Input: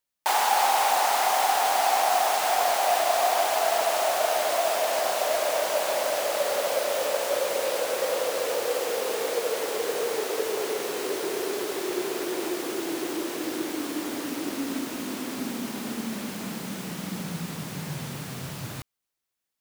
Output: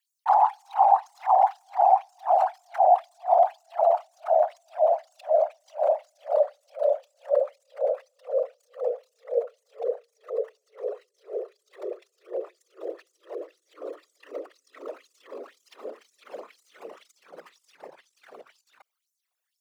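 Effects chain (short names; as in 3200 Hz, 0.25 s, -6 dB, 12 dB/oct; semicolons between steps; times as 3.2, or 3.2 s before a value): formant sharpening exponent 3; HPF 390 Hz; LFO high-pass sine 2 Hz 530–7200 Hz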